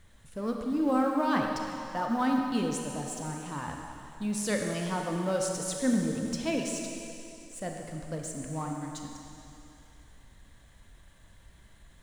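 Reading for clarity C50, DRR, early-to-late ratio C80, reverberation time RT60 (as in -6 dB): 2.0 dB, 1.5 dB, 3.0 dB, 2.8 s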